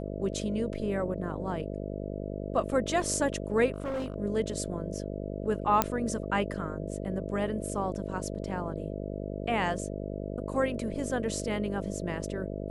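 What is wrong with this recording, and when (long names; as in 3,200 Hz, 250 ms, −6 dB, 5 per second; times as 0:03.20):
mains buzz 50 Hz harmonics 13 −36 dBFS
0:03.72–0:04.16: clipping −29 dBFS
0:05.82: click −7 dBFS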